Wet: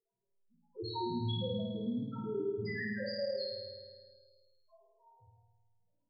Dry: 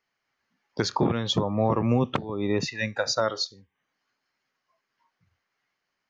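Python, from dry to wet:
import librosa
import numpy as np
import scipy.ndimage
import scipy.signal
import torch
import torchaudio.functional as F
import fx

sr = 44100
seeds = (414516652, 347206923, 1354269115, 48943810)

p1 = fx.spec_box(x, sr, start_s=4.69, length_s=0.7, low_hz=330.0, high_hz=900.0, gain_db=12)
p2 = fx.chorus_voices(p1, sr, voices=6, hz=1.4, base_ms=20, depth_ms=3.0, mix_pct=30)
p3 = fx.over_compress(p2, sr, threshold_db=-31.0, ratio=-0.5)
p4 = p2 + (p3 * 10.0 ** (1.5 / 20.0))
p5 = fx.comb_fb(p4, sr, f0_hz=990.0, decay_s=0.26, harmonics='all', damping=0.0, mix_pct=60)
p6 = fx.env_lowpass(p5, sr, base_hz=760.0, full_db=-31.5)
p7 = fx.spec_topn(p6, sr, count=1)
p8 = fx.doubler(p7, sr, ms=25.0, db=-4)
p9 = p8 + fx.room_flutter(p8, sr, wall_m=9.1, rt60_s=1.3, dry=0)
y = fx.band_squash(p9, sr, depth_pct=40)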